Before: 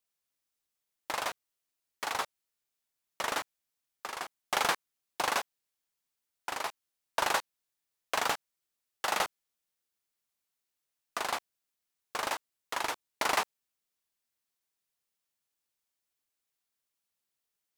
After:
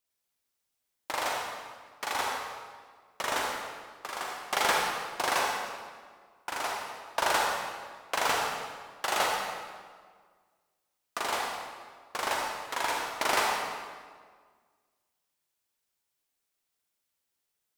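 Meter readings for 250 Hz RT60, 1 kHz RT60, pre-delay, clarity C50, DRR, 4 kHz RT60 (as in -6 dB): 1.9 s, 1.7 s, 37 ms, -1.0 dB, -2.0 dB, 1.3 s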